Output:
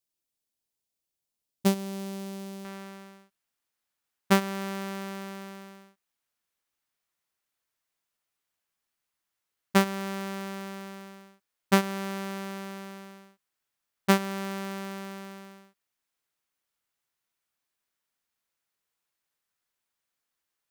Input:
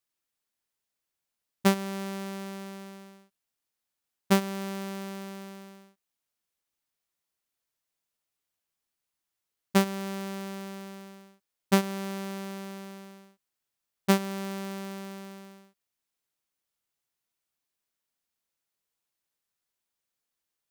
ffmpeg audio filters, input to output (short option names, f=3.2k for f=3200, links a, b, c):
-af "asetnsamples=n=441:p=0,asendcmd='2.65 equalizer g 4.5',equalizer=f=1.5k:t=o:w=1.8:g=-8.5"